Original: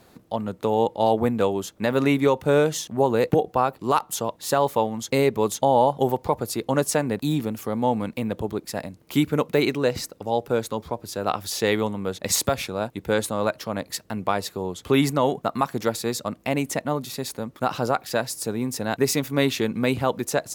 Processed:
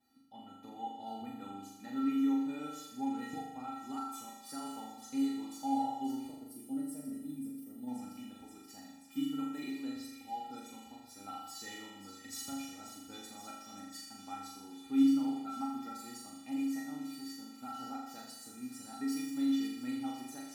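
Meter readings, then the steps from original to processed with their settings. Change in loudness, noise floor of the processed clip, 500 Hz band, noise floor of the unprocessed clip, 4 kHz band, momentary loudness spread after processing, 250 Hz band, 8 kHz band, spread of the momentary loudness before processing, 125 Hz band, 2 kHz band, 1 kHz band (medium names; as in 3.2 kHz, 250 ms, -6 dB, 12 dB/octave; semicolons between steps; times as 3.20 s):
-14.0 dB, -54 dBFS, -32.0 dB, -55 dBFS, -17.0 dB, 16 LU, -8.5 dB, -18.0 dB, 9 LU, -29.5 dB, -21.5 dB, -17.0 dB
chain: feedback comb 270 Hz, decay 0.24 s, harmonics odd, mix 100%; on a send: feedback echo behind a high-pass 531 ms, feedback 77%, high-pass 2 kHz, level -10 dB; on the sum: time-frequency box 6.29–7.88 s, 710–7900 Hz -13 dB; peaking EQ 62 Hz +5.5 dB 1.1 oct; feedback comb 240 Hz, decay 1.4 s, mix 50%; flutter echo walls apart 6.9 m, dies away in 0.97 s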